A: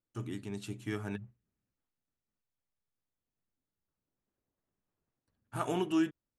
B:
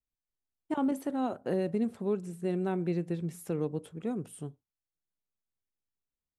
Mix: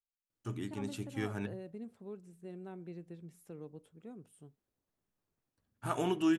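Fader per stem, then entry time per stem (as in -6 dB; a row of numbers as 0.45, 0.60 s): 0.0, -15.5 dB; 0.30, 0.00 s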